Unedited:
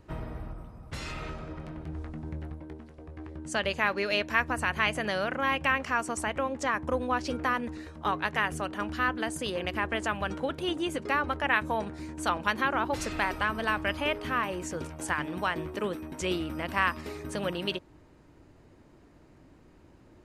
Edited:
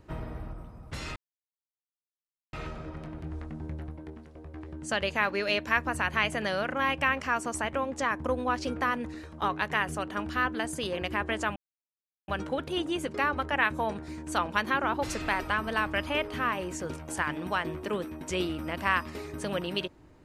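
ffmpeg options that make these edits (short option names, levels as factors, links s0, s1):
-filter_complex "[0:a]asplit=3[s0][s1][s2];[s0]atrim=end=1.16,asetpts=PTS-STARTPTS,afade=t=out:st=1.156:d=0.004:c=hsin,apad=pad_dur=1.37[s3];[s1]atrim=start=1.16:end=10.19,asetpts=PTS-STARTPTS,afade=t=in:d=0.004:c=hsin,afade=t=out:st=9.026:d=0.004:c=hsin,apad=pad_dur=0.72[s4];[s2]atrim=start=10.19,asetpts=PTS-STARTPTS,afade=t=in:d=0.004:c=hsin[s5];[s3][s4][s5]concat=n=3:v=0:a=1"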